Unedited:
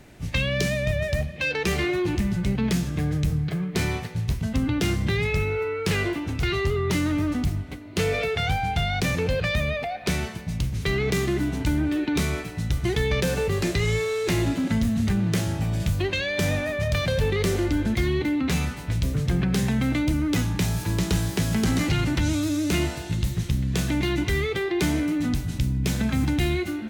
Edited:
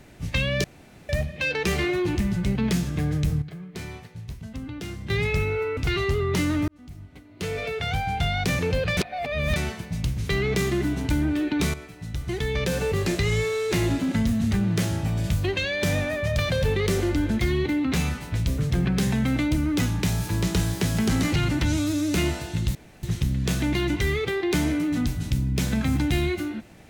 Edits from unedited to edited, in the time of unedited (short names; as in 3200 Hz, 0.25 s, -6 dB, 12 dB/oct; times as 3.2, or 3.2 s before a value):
0.64–1.09 room tone
3.42–5.1 gain -11 dB
5.77–6.33 cut
7.24–8.85 fade in
9.53–10.12 reverse
12.3–13.51 fade in, from -12.5 dB
23.31 insert room tone 0.28 s